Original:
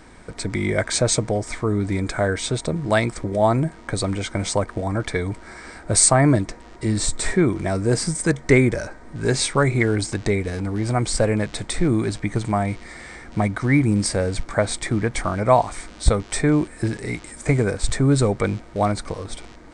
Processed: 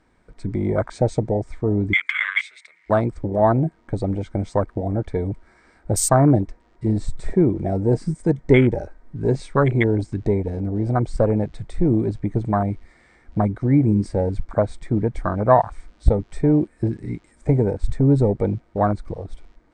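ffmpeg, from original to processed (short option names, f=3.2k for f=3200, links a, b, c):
-filter_complex "[0:a]asettb=1/sr,asplit=3[a][b][c];[a]atrim=end=1.934[d];[b]atrim=start=1.93:end=2.9,asetpts=PTS-STARTPTS,afade=t=in:d=0.004:c=qsin,afade=t=out:st=0.966:d=0.004:c=qsin,highpass=f=2.1k:t=q:w=12[e];[c]atrim=start=2.896[f];[d][e]acrossfade=d=0.004:c1=hsin:c2=qsin[g];[g][f]acrossfade=d=0.004:c1=qsin:c2=hsin,afwtdn=0.0891,aemphasis=mode=reproduction:type=cd,volume=1dB"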